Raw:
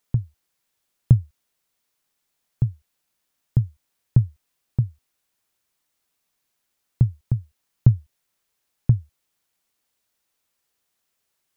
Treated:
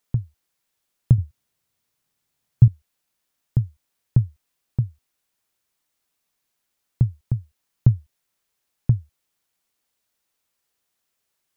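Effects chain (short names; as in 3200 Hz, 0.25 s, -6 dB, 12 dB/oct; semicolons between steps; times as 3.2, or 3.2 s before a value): 1.18–2.68 bell 110 Hz +11 dB 1.7 oct; gain -1 dB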